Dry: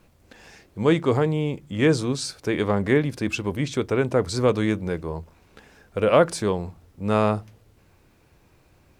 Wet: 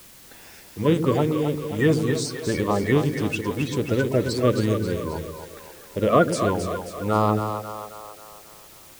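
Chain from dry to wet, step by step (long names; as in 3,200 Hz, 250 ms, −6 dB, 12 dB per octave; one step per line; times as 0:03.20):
spectral magnitudes quantised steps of 30 dB
echo with a time of its own for lows and highs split 420 Hz, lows 112 ms, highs 268 ms, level −7 dB
bit-depth reduction 8 bits, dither triangular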